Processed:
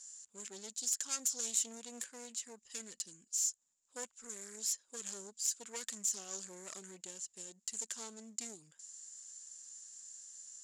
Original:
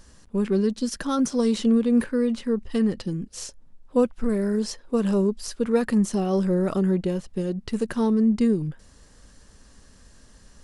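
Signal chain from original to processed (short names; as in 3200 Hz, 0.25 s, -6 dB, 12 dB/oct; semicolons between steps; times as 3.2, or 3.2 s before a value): self-modulated delay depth 0.32 ms; band-pass 7100 Hz, Q 11; gain +17 dB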